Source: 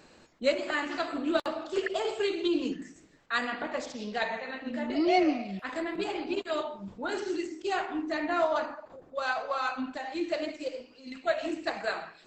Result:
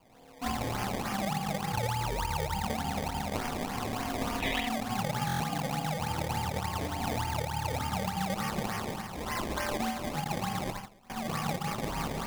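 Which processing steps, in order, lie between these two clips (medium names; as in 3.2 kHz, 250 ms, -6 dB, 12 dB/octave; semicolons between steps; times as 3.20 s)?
self-modulated delay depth 0.095 ms; spring tank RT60 3 s, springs 45/56 ms, chirp 70 ms, DRR -5 dB; in parallel at -6.5 dB: bit crusher 7-bit; on the sum: high-order bell 1.1 kHz -10 dB 2.5 oct; on a send: flutter echo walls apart 4.6 m, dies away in 0.78 s; 10.24–11.10 s: on the sum: gate -29 dBFS, range -21 dB; rotary cabinet horn 0.9 Hz, later 6 Hz, at 10.58 s; compression 10:1, threshold -28 dBFS, peak gain reduction 13.5 dB; ring modulator 490 Hz; decimation with a swept rate 22×, swing 100% 3.4 Hz; 4.41–4.67 s: time-frequency box 1.7–3.9 kHz +11 dB; buffer glitch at 5.26 s, samples 1024, times 5; trim +2 dB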